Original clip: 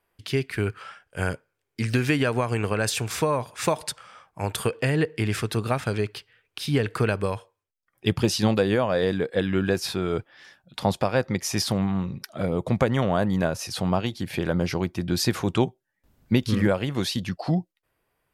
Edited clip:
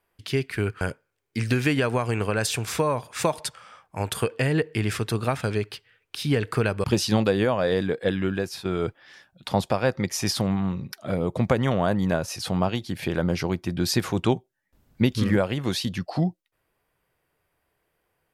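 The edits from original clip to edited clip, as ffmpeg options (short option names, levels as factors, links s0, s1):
-filter_complex "[0:a]asplit=4[s0][s1][s2][s3];[s0]atrim=end=0.812[s4];[s1]atrim=start=1.238:end=7.272[s5];[s2]atrim=start=8.148:end=9.96,asetpts=PTS-STARTPTS,afade=t=out:st=1.252:d=0.56:silence=0.354813[s6];[s3]atrim=start=9.96,asetpts=PTS-STARTPTS,afade=t=in:d=0.004:c=hsin:silence=0.354813[s7];[s4][s5]acrossfade=d=0.004:c1=hsin:c2=hsin[s8];[s6][s7]concat=n=2:v=0:a=1[s9];[s8][s9]acrossfade=d=0.004:c1=hsin:c2=hsin"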